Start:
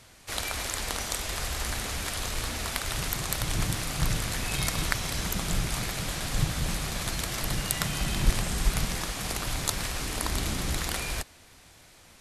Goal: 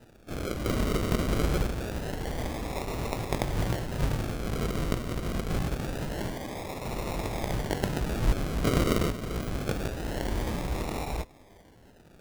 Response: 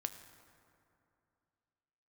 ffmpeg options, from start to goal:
-filter_complex "[0:a]asettb=1/sr,asplit=3[a][b][c];[a]atrim=end=0.644[d];[b]atrim=start=0.64:end=1.66,asetpts=PTS-STARTPTS,afade=t=in:d=0.004:c=qsin,afade=t=out:st=1.016:d=0.004:c=qsin,acontrast=76[e];[c]atrim=start=1.656[f];[d][e]acrossfade=d=0.004:c1=hsin:c2=qsin[g];[g][f]acrossfade=d=0.004:c1=qsin:c2=hsin,asettb=1/sr,asplit=3[h][i][j];[h]atrim=end=6.314[k];[i]atrim=start=6.31:end=6.85,asetpts=PTS-STARTPTS,afade=t=in:d=0.004:c=qsin,afade=t=out:st=0.536:d=0.004:c=qsin,highpass=f=810:w=0.5412,highpass=f=810:w=1.3066[l];[j]atrim=start=6.846[m];[k][l]acrossfade=d=0.004:c1=hsin:c2=qsin[n];[n][m]acrossfade=d=0.004:c1=qsin:c2=hsin,asettb=1/sr,asplit=3[o][p][q];[o]atrim=end=8.644[r];[p]atrim=start=8.64:end=9.09,asetpts=PTS-STARTPTS,afade=t=in:d=0.004:c=qsin,afade=t=out:st=0.446:d=0.004:c=qsin,aemphasis=mode=production:type=riaa[s];[q]atrim=start=9.086[t];[r][s]acrossfade=d=0.004:c1=hsin:c2=qsin[u];[u][t]acrossfade=d=0.004:c1=qsin:c2=hsin,flanger=delay=17:depth=3.9:speed=1.6,acrusher=samples=40:mix=1:aa=0.000001:lfo=1:lforange=24:lforate=0.25,volume=2.5dB"

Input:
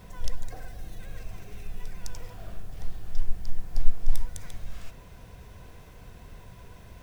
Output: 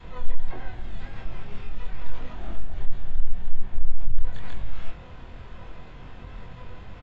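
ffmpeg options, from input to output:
-filter_complex "[0:a]lowshelf=f=220:g=-2,acontrast=70,adynamicequalizer=threshold=0.00158:dfrequency=350:dqfactor=1.6:tfrequency=350:tqfactor=1.6:attack=5:release=100:ratio=0.375:range=2.5:mode=cutabove:tftype=bell,flanger=delay=4.2:depth=6.9:regen=-49:speed=0.38:shape=triangular,aresample=8000,asoftclip=type=tanh:threshold=-19dB,aresample=44100,asplit=4[a][b][c][d];[b]asetrate=22050,aresample=44100,atempo=2,volume=-1dB[e];[c]asetrate=55563,aresample=44100,atempo=0.793701,volume=-7dB[f];[d]asetrate=88200,aresample=44100,atempo=0.5,volume=-13dB[g];[a][e][f][g]amix=inputs=4:normalize=0,asplit=2[h][i];[i]adelay=24,volume=-2dB[j];[h][j]amix=inputs=2:normalize=0"

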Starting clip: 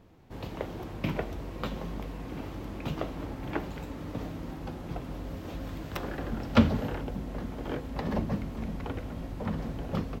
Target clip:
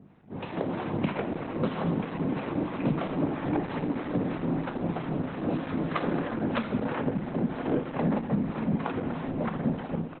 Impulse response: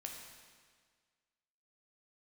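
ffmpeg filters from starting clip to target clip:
-filter_complex "[0:a]lowpass=2.5k,aeval=exprs='val(0)+0.00398*(sin(2*PI*50*n/s)+sin(2*PI*2*50*n/s)/2+sin(2*PI*3*50*n/s)/3+sin(2*PI*4*50*n/s)/4+sin(2*PI*5*50*n/s)/5)':c=same,acompressor=threshold=-33dB:ratio=8,highpass=f=140:w=0.5412,highpass=f=140:w=1.3066,asoftclip=type=tanh:threshold=-29.5dB,dynaudnorm=f=130:g=7:m=10.5dB,acrossover=split=720[a][b];[a]aeval=exprs='val(0)*(1-0.7/2+0.7/2*cos(2*PI*3.1*n/s))':c=same[c];[b]aeval=exprs='val(0)*(1-0.7/2-0.7/2*cos(2*PI*3.1*n/s))':c=same[d];[c][d]amix=inputs=2:normalize=0,aecho=1:1:60|120|180:0.0944|0.0434|0.02,asplit=2[e][f];[1:a]atrim=start_sample=2205[g];[f][g]afir=irnorm=-1:irlink=0,volume=3.5dB[h];[e][h]amix=inputs=2:normalize=0" -ar 48000 -c:a libopus -b:a 8k

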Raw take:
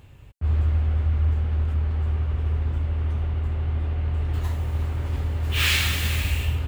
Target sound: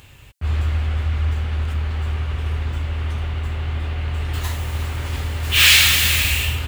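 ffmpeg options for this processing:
-filter_complex "[0:a]tiltshelf=f=1.2k:g=-7,asplit=2[a][b];[b]volume=20dB,asoftclip=hard,volume=-20dB,volume=-3dB[c];[a][c]amix=inputs=2:normalize=0,volume=3dB"

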